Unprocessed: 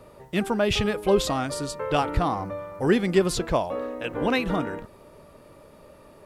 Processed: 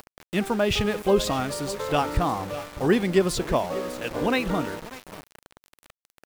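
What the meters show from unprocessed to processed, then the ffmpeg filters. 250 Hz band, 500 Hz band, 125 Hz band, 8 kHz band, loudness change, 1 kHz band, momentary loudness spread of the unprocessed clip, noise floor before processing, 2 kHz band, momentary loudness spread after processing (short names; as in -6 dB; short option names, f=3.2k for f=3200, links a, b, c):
0.0 dB, 0.0 dB, 0.0 dB, +0.5 dB, 0.0 dB, 0.0 dB, 8 LU, -51 dBFS, +0.5 dB, 11 LU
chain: -af "acompressor=mode=upward:threshold=-35dB:ratio=2.5,aecho=1:1:596:0.168,aeval=exprs='val(0)*gte(abs(val(0)),0.0188)':c=same"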